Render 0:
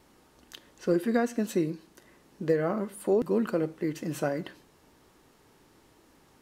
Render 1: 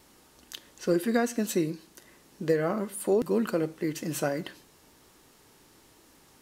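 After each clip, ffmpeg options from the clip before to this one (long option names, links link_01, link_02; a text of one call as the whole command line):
ffmpeg -i in.wav -af "highshelf=frequency=3000:gain=8.5" out.wav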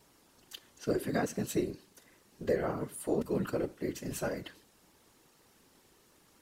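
ffmpeg -i in.wav -af "afftfilt=real='hypot(re,im)*cos(2*PI*random(0))':imag='hypot(re,im)*sin(2*PI*random(1))':win_size=512:overlap=0.75" out.wav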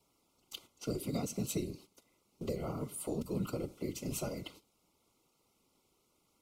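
ffmpeg -i in.wav -filter_complex "[0:a]acrossover=split=210|3000[link_01][link_02][link_03];[link_02]acompressor=threshold=-39dB:ratio=6[link_04];[link_01][link_04][link_03]amix=inputs=3:normalize=0,asuperstop=centerf=1700:order=12:qfactor=3,agate=range=-11dB:threshold=-55dB:ratio=16:detection=peak,volume=1dB" out.wav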